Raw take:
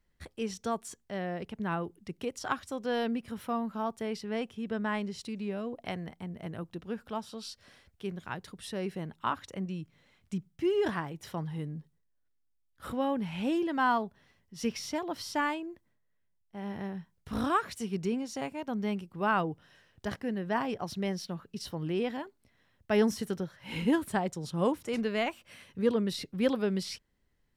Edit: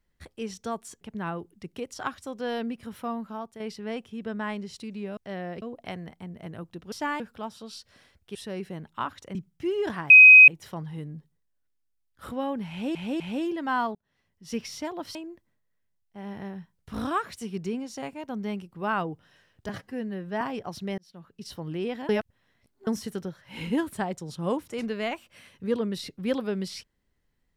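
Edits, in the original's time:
1.01–1.46 s: move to 5.62 s
3.63–4.05 s: fade out, to -8.5 dB
8.07–8.61 s: delete
9.61–10.34 s: delete
11.09 s: add tone 2.52 kHz -7 dBFS 0.38 s
13.31–13.56 s: loop, 3 plays
14.06–14.66 s: fade in
15.26–15.54 s: move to 6.92 s
20.08–20.56 s: stretch 1.5×
21.13–21.69 s: fade in
22.24–23.02 s: reverse

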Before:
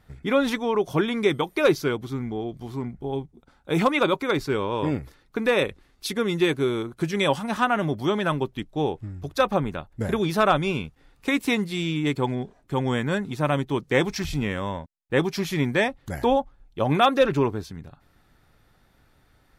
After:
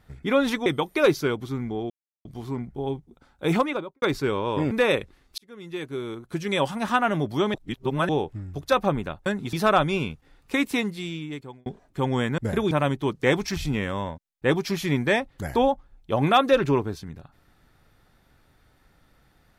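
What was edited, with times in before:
0.66–1.27 s: delete
2.51 s: insert silence 0.35 s
3.74–4.28 s: studio fade out
4.97–5.39 s: delete
6.06–7.55 s: fade in linear
8.22–8.77 s: reverse
9.94–10.27 s: swap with 13.12–13.39 s
11.29–12.40 s: fade out

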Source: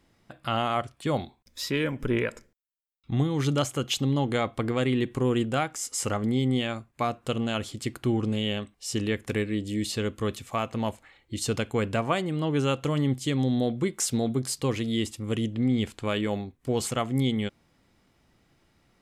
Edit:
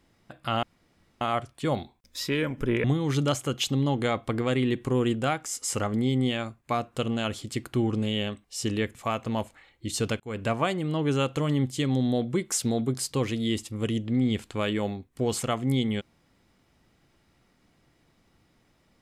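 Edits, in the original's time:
0.63 s: insert room tone 0.58 s
2.26–3.14 s: delete
9.25–10.43 s: delete
11.68–11.97 s: fade in

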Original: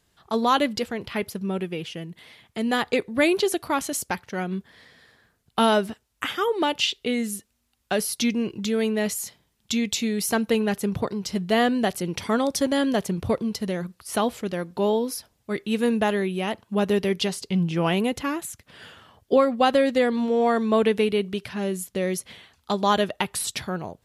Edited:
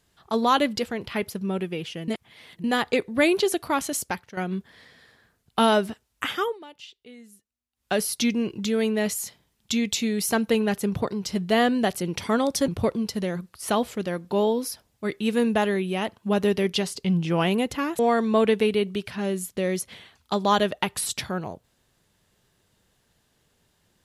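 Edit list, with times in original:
2.08–2.64 s: reverse
3.94–4.37 s: fade out equal-power, to -11.5 dB
6.40–7.92 s: dip -21 dB, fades 0.19 s
12.68–13.14 s: delete
18.45–20.37 s: delete

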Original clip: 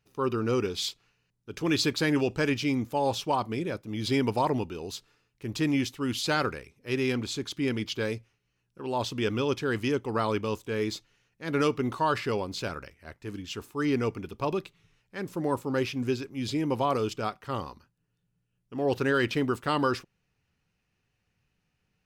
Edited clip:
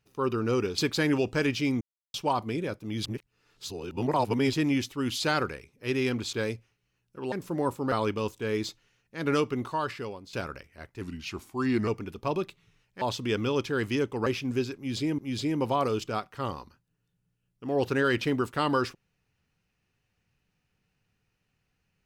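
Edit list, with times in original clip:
0.78–1.81 s: delete
2.84–3.17 s: mute
4.08–5.56 s: reverse
7.36–7.95 s: delete
8.94–10.19 s: swap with 15.18–15.78 s
11.59–12.60 s: fade out, to -14 dB
13.28–14.04 s: speed 88%
16.28–16.70 s: loop, 2 plays

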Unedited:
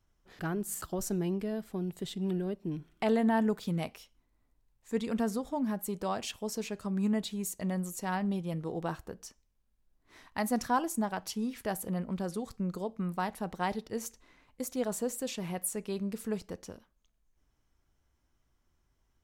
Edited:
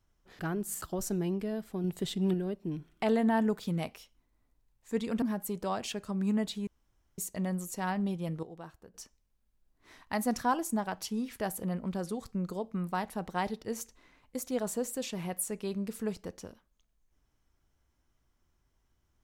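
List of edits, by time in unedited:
1.84–2.34 s: gain +4 dB
5.22–5.61 s: delete
6.33–6.70 s: delete
7.43 s: insert room tone 0.51 s
8.68–9.19 s: gain -11.5 dB

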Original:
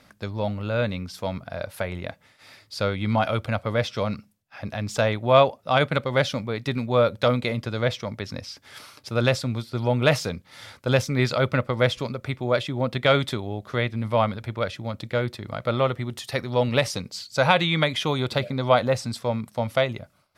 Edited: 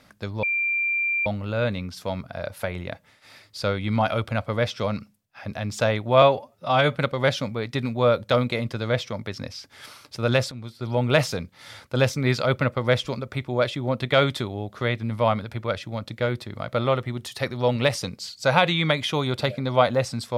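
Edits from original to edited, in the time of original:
0.43 s: add tone 2.37 kHz -21 dBFS 0.83 s
5.39–5.88 s: stretch 1.5×
9.44–9.96 s: fade in, from -13.5 dB

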